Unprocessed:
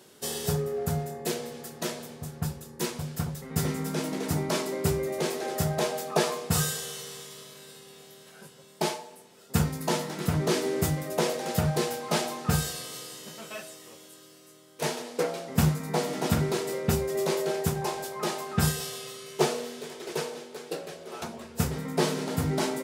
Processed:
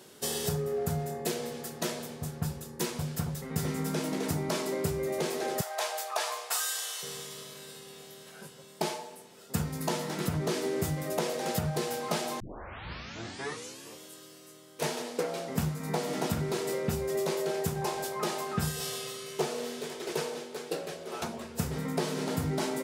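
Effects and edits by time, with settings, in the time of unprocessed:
0:05.61–0:07.03: high-pass filter 680 Hz 24 dB per octave
0:12.40: tape start 1.60 s
whole clip: downward compressor 5 to 1, threshold −29 dBFS; level +1.5 dB

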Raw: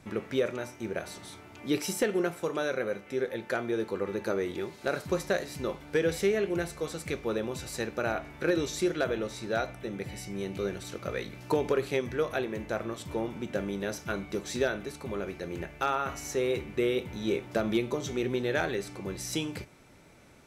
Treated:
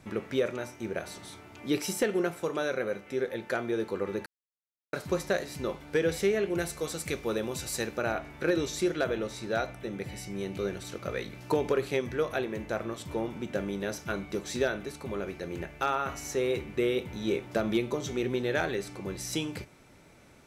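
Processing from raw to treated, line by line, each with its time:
0:04.26–0:04.93: silence
0:06.58–0:07.97: high-shelf EQ 4,700 Hz +8 dB

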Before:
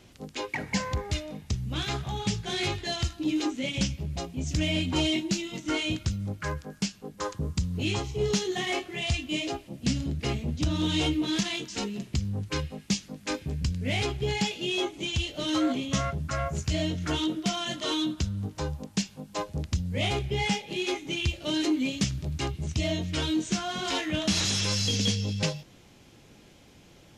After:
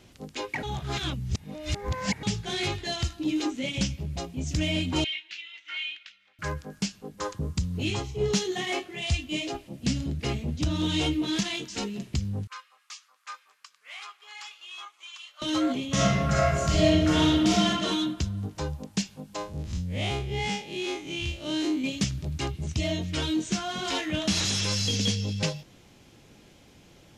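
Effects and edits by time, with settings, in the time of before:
0:00.63–0:02.23: reverse
0:05.04–0:06.39: flat-topped band-pass 2,400 Hz, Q 1.4
0:07.90–0:09.55: multiband upward and downward expander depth 40%
0:12.47–0:15.42: four-pole ladder high-pass 1,100 Hz, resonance 75%
0:15.92–0:17.67: thrown reverb, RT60 1.4 s, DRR −6 dB
0:19.36–0:21.84: spectrum smeared in time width 85 ms

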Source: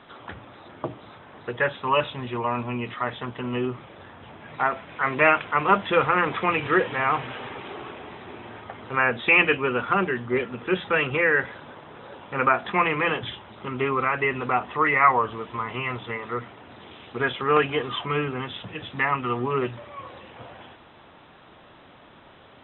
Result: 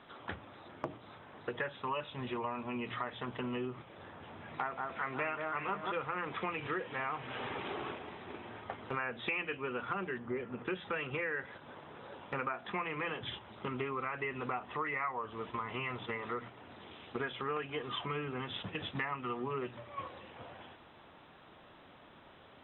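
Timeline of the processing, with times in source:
0:03.85–0:05.92: delay that swaps between a low-pass and a high-pass 179 ms, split 1,700 Hz, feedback 62%, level −4 dB
0:10.18–0:10.65: high-frequency loss of the air 440 metres
whole clip: mains-hum notches 60/120 Hz; noise gate −38 dBFS, range −7 dB; downward compressor 5 to 1, threshold −36 dBFS

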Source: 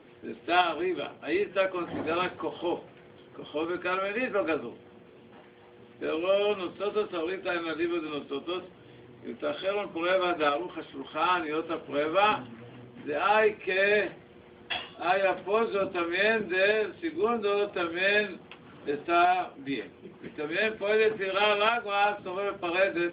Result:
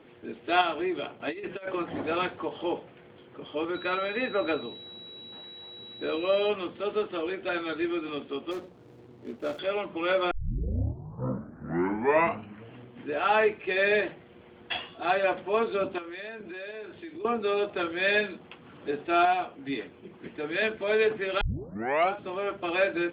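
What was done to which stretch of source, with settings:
0:01.20–0:01.82: compressor whose output falls as the input rises −32 dBFS, ratio −0.5
0:03.74–0:06.48: steady tone 3,900 Hz −43 dBFS
0:08.51–0:09.59: running median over 25 samples
0:10.31: tape start 2.45 s
0:15.98–0:17.25: downward compressor 5 to 1, threshold −38 dBFS
0:21.41: tape start 0.73 s

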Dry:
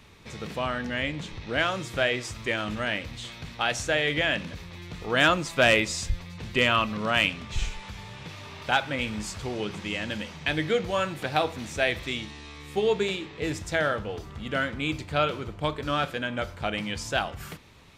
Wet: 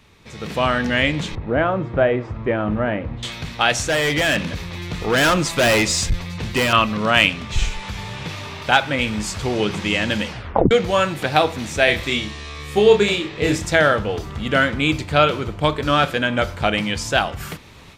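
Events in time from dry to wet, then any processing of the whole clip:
0:01.35–0:03.23: low-pass filter 1,000 Hz
0:03.80–0:06.73: hard clipping −25 dBFS
0:10.27: tape stop 0.44 s
0:11.85–0:13.70: double-tracking delay 29 ms −5 dB
whole clip: automatic gain control gain up to 11.5 dB

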